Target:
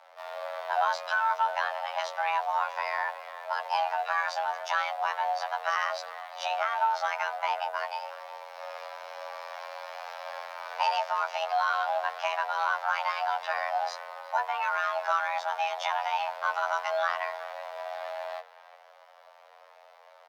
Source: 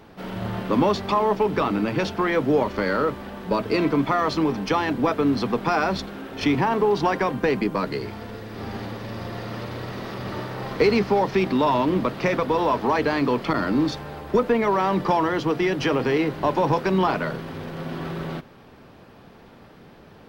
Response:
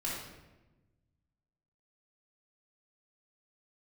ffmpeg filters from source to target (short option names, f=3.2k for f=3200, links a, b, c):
-filter_complex "[0:a]asplit=2[a][b];[b]adelay=360,highpass=300,lowpass=3.4k,asoftclip=type=hard:threshold=-16.5dB,volume=-15dB[c];[a][c]amix=inputs=2:normalize=0,afftfilt=real='hypot(re,im)*cos(PI*b)':imag='0':win_size=2048:overlap=0.75,afreqshift=470,volume=-4dB"